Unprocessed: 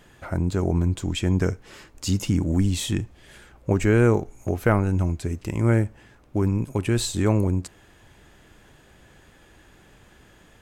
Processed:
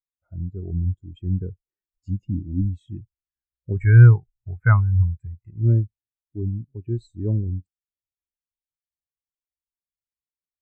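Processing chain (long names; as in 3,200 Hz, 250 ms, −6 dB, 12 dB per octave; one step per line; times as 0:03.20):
0:03.75–0:05.50: octave-band graphic EQ 125/250/500/1,000/2,000/4,000/8,000 Hz +5/−5/−5/+7/+11/−4/+7 dB
every bin expanded away from the loudest bin 2.5 to 1
level +1.5 dB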